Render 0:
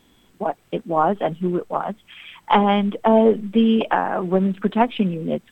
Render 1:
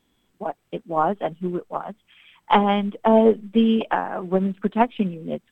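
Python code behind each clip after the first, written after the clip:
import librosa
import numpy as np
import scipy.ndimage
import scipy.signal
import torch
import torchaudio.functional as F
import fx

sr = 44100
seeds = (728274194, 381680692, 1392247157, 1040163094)

y = fx.upward_expand(x, sr, threshold_db=-33.0, expansion=1.5)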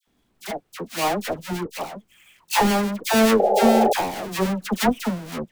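y = fx.halfwave_hold(x, sr)
y = fx.dispersion(y, sr, late='lows', ms=76.0, hz=1300.0)
y = fx.spec_paint(y, sr, seeds[0], shape='noise', start_s=3.39, length_s=0.54, low_hz=370.0, high_hz=860.0, level_db=-13.0)
y = y * 10.0 ** (-5.0 / 20.0)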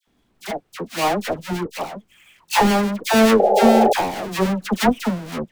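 y = fx.high_shelf(x, sr, hz=6900.0, db=-5.5)
y = y * 10.0 ** (3.0 / 20.0)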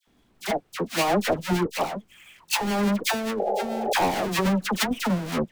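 y = fx.over_compress(x, sr, threshold_db=-21.0, ratio=-1.0)
y = y * 10.0 ** (-2.5 / 20.0)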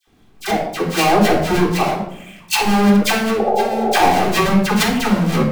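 y = fx.room_shoebox(x, sr, seeds[1], volume_m3=1900.0, walls='furnished', distance_m=3.7)
y = y * 10.0 ** (4.5 / 20.0)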